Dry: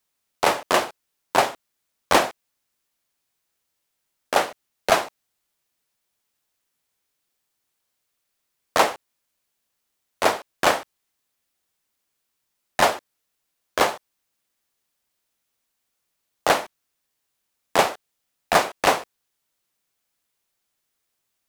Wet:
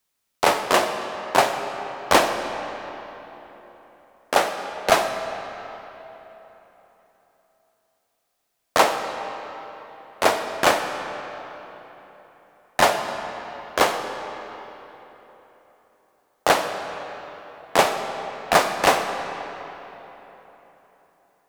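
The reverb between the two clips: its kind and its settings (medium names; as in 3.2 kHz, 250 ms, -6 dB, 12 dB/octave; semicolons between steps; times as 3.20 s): algorithmic reverb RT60 3.8 s, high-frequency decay 0.7×, pre-delay 15 ms, DRR 6.5 dB; trim +1 dB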